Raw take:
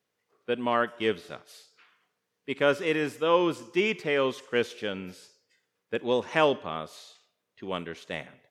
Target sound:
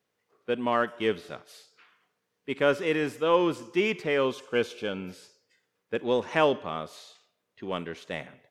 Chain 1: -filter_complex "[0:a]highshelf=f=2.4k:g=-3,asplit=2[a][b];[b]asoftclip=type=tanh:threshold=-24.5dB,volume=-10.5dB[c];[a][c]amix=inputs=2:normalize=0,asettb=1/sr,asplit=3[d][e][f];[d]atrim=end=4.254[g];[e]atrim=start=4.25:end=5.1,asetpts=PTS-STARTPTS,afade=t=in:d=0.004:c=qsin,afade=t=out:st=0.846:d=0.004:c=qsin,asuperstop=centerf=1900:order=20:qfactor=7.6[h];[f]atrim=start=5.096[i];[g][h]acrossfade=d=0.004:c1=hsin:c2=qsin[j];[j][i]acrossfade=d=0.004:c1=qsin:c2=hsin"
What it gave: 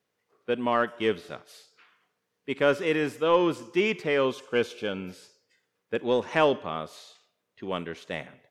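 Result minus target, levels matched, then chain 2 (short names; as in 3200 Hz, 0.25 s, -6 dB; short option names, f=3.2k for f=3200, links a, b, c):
soft clip: distortion -7 dB
-filter_complex "[0:a]highshelf=f=2.4k:g=-3,asplit=2[a][b];[b]asoftclip=type=tanh:threshold=-36.5dB,volume=-10.5dB[c];[a][c]amix=inputs=2:normalize=0,asettb=1/sr,asplit=3[d][e][f];[d]atrim=end=4.254[g];[e]atrim=start=4.25:end=5.1,asetpts=PTS-STARTPTS,afade=t=in:d=0.004:c=qsin,afade=t=out:st=0.846:d=0.004:c=qsin,asuperstop=centerf=1900:order=20:qfactor=7.6[h];[f]atrim=start=5.096[i];[g][h]acrossfade=d=0.004:c1=hsin:c2=qsin[j];[j][i]acrossfade=d=0.004:c1=qsin:c2=hsin"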